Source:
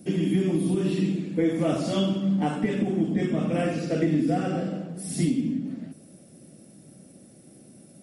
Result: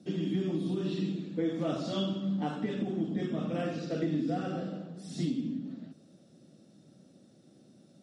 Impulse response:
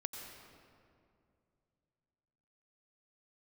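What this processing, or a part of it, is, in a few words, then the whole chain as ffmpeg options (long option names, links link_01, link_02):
car door speaker: -af "highpass=94,equalizer=frequency=1300:width_type=q:width=4:gain=3,equalizer=frequency=2200:width_type=q:width=4:gain=-6,equalizer=frequency=3800:width_type=q:width=4:gain=8,lowpass=frequency=6800:width=0.5412,lowpass=frequency=6800:width=1.3066,volume=-7.5dB"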